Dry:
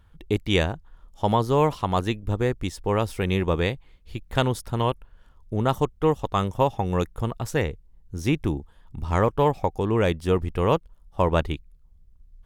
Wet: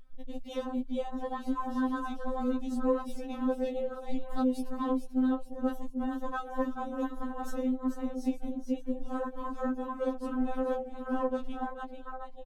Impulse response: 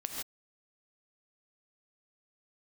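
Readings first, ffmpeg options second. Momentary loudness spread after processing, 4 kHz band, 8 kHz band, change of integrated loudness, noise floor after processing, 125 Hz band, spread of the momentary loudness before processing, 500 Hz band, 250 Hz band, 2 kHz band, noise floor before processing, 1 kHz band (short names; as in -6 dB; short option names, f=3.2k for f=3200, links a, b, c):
7 LU, -18.5 dB, under -10 dB, -9.0 dB, -43 dBFS, under -30 dB, 11 LU, -10.0 dB, -2.5 dB, -12.5 dB, -55 dBFS, -10.0 dB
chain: -filter_complex "[0:a]asplit=2[a][b];[b]acompressor=threshold=-31dB:ratio=12,volume=-1dB[c];[a][c]amix=inputs=2:normalize=0,asplit=6[d][e][f][g][h][i];[e]adelay=439,afreqshift=140,volume=-8dB[j];[f]adelay=878,afreqshift=280,volume=-16dB[k];[g]adelay=1317,afreqshift=420,volume=-23.9dB[l];[h]adelay=1756,afreqshift=560,volume=-31.9dB[m];[i]adelay=2195,afreqshift=700,volume=-39.8dB[n];[d][j][k][l][m][n]amix=inputs=6:normalize=0,asplit=2[o][p];[1:a]atrim=start_sample=2205,afade=t=out:st=0.14:d=0.01,atrim=end_sample=6615[q];[p][q]afir=irnorm=-1:irlink=0,volume=-19.5dB[r];[o][r]amix=inputs=2:normalize=0,acrossover=split=190|3000[s][t][u];[t]acompressor=threshold=-47dB:ratio=1.5[v];[s][v][u]amix=inputs=3:normalize=0,asoftclip=type=tanh:threshold=-19.5dB,afwtdn=0.0178,afftfilt=real='re*3.46*eq(mod(b,12),0)':imag='im*3.46*eq(mod(b,12),0)':win_size=2048:overlap=0.75,volume=3dB"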